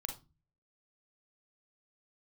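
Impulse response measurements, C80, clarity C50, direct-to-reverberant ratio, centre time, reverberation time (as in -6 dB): 17.0 dB, 8.0 dB, 4.0 dB, 16 ms, 0.30 s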